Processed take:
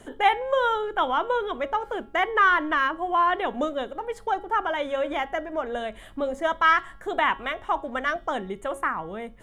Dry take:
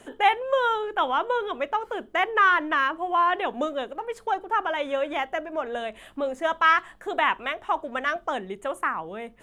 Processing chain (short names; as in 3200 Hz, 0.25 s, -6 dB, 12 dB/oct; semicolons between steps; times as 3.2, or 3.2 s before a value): low shelf 130 Hz +11.5 dB; notch 2600 Hz, Q 8.6; de-hum 275.1 Hz, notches 20